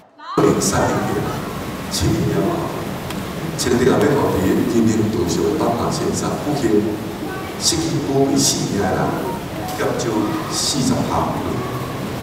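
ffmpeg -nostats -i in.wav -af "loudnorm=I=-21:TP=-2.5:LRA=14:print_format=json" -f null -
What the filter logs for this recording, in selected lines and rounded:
"input_i" : "-19.3",
"input_tp" : "-2.4",
"input_lra" : "2.8",
"input_thresh" : "-29.3",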